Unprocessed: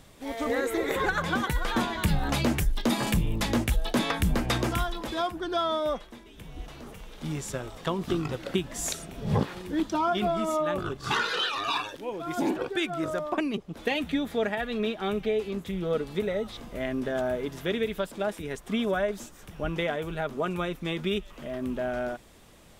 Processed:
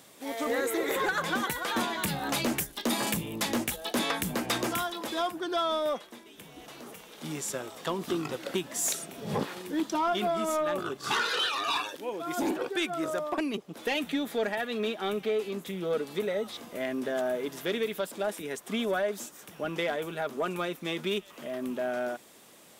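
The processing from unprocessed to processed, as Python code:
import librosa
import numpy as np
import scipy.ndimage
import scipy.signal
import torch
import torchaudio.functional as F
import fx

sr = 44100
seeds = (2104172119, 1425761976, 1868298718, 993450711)

y = scipy.signal.sosfilt(scipy.signal.butter(2, 230.0, 'highpass', fs=sr, output='sos'), x)
y = fx.high_shelf(y, sr, hz=7200.0, db=8.5)
y = 10.0 ** (-20.0 / 20.0) * np.tanh(y / 10.0 ** (-20.0 / 20.0))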